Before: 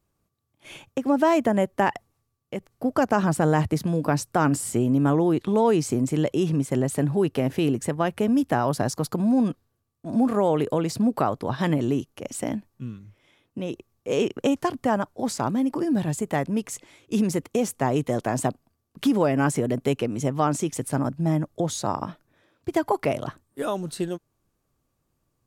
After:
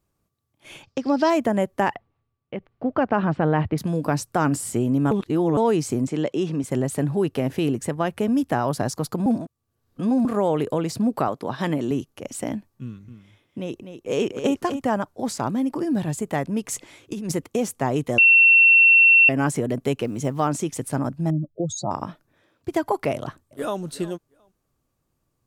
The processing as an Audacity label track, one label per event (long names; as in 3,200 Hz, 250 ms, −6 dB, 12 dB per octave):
0.830000	1.300000	low-pass with resonance 4,900 Hz, resonance Q 6.6
1.950000	3.780000	low-pass filter 3,300 Hz 24 dB per octave
5.110000	5.570000	reverse
6.070000	6.640000	band-pass filter 180–6,600 Hz
9.260000	10.250000	reverse
11.280000	11.910000	high-pass filter 160 Hz
12.830000	14.820000	single-tap delay 250 ms −9 dB
16.680000	17.320000	compressor whose output falls as the input rises −28 dBFS
18.180000	19.290000	beep over 2,710 Hz −10 dBFS
20.010000	20.480000	log-companded quantiser 8 bits
21.300000	21.910000	expanding power law on the bin magnitudes exponent 2.5
23.150000	23.790000	delay throw 360 ms, feedback 15%, level −17 dB